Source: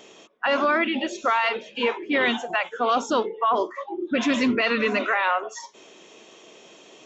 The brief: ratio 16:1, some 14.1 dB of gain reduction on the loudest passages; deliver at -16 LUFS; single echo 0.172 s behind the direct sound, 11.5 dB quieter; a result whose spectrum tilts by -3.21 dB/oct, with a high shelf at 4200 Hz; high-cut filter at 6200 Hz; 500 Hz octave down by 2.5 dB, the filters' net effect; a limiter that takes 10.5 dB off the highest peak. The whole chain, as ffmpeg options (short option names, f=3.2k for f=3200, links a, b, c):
-af "lowpass=6.2k,equalizer=f=500:t=o:g=-3,highshelf=f=4.2k:g=-4,acompressor=threshold=-33dB:ratio=16,alimiter=level_in=6.5dB:limit=-24dB:level=0:latency=1,volume=-6.5dB,aecho=1:1:172:0.266,volume=23.5dB"